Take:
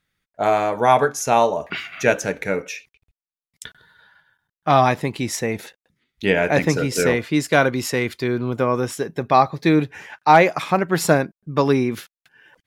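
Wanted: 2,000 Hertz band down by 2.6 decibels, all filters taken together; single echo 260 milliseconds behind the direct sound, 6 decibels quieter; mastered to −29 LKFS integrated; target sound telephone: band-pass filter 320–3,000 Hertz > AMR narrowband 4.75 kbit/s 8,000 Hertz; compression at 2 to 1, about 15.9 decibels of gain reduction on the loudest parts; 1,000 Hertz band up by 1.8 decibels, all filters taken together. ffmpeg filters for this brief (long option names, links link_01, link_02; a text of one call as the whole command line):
ffmpeg -i in.wav -af "equalizer=frequency=1000:width_type=o:gain=3.5,equalizer=frequency=2000:width_type=o:gain=-4,acompressor=threshold=-37dB:ratio=2,highpass=320,lowpass=3000,aecho=1:1:260:0.501,volume=5dB" -ar 8000 -c:a libopencore_amrnb -b:a 4750 out.amr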